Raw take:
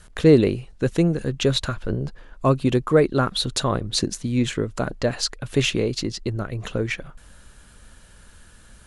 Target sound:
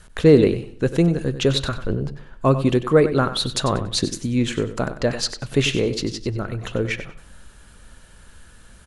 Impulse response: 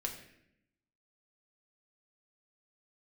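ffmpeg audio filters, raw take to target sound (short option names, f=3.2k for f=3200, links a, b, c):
-filter_complex "[0:a]aecho=1:1:95|190|285:0.251|0.0628|0.0157,asplit=2[a][b];[1:a]atrim=start_sample=2205,asetrate=57330,aresample=44100,lowpass=5k[c];[b][c]afir=irnorm=-1:irlink=0,volume=-11dB[d];[a][d]amix=inputs=2:normalize=0"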